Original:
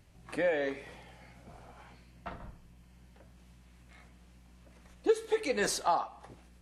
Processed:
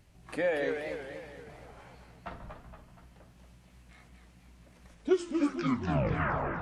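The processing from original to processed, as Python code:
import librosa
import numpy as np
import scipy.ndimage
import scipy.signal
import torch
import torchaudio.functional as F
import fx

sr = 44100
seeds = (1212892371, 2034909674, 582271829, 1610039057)

y = fx.tape_stop_end(x, sr, length_s=1.77)
y = fx.echo_warbled(y, sr, ms=237, feedback_pct=51, rate_hz=2.8, cents=193, wet_db=-6.5)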